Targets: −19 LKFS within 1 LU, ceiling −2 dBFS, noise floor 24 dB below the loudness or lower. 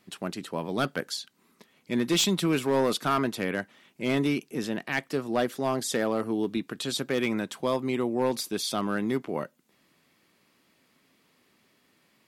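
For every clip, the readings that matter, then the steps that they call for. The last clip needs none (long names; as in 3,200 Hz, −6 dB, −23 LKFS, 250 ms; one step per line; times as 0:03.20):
share of clipped samples 0.6%; peaks flattened at −18.0 dBFS; integrated loudness −28.5 LKFS; sample peak −18.0 dBFS; target loudness −19.0 LKFS
→ clipped peaks rebuilt −18 dBFS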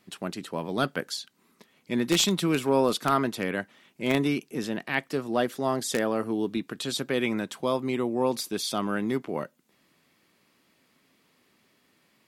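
share of clipped samples 0.0%; integrated loudness −28.0 LKFS; sample peak −9.0 dBFS; target loudness −19.0 LKFS
→ level +9 dB
brickwall limiter −2 dBFS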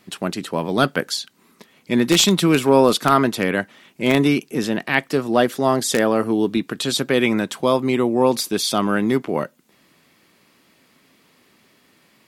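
integrated loudness −19.0 LKFS; sample peak −2.0 dBFS; background noise floor −58 dBFS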